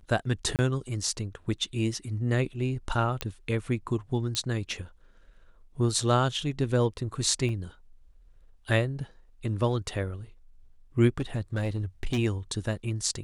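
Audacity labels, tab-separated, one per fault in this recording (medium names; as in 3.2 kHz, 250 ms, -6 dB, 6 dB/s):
0.560000	0.590000	dropout 28 ms
3.210000	3.210000	pop -13 dBFS
4.350000	4.350000	pop -14 dBFS
7.490000	7.490000	dropout 2.6 ms
11.180000	12.190000	clipped -23.5 dBFS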